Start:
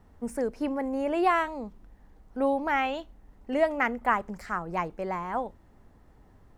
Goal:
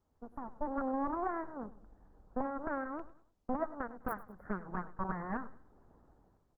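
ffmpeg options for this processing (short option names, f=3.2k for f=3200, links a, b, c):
-filter_complex "[0:a]asplit=2[a][b];[b]asoftclip=type=tanh:threshold=-20.5dB,volume=-9dB[c];[a][c]amix=inputs=2:normalize=0,bass=f=250:g=-5,treble=f=4k:g=-10,aeval=exprs='0.316*(cos(1*acos(clip(val(0)/0.316,-1,1)))-cos(1*PI/2))+0.112*(cos(3*acos(clip(val(0)/0.316,-1,1)))-cos(3*PI/2))+0.0178*(cos(6*acos(clip(val(0)/0.316,-1,1)))-cos(6*PI/2))':c=same,aeval=exprs='(mod(3.98*val(0)+1,2)-1)/3.98':c=same,asuperstop=centerf=4500:order=12:qfactor=0.5,highshelf=f=2.9k:g=-10,acompressor=threshold=-46dB:ratio=8,alimiter=level_in=17.5dB:limit=-24dB:level=0:latency=1:release=433,volume=-17.5dB,dynaudnorm=f=100:g=9:m=15dB,asettb=1/sr,asplit=3[d][e][f];[d]atrim=end=2.994[g];[e]atrim=start=2.99:end=3.91,asetpts=PTS-STARTPTS,afade=t=in:d=0.004:c=qsin,afade=t=out:st=0.916:d=0.004:c=qsin,agate=range=-19dB:threshold=-55dB:ratio=16:detection=peak[h];[f]atrim=start=3.906[i];[g][h]acrossfade=d=0.004:c1=hsin:c2=qsin[j];[j][i]acrossfade=d=0.004:c1=qsin:c2=hsin,aecho=1:1:100|200|300:0.141|0.0494|0.0173,volume=4.5dB" -ar 48000 -c:a libopus -b:a 16k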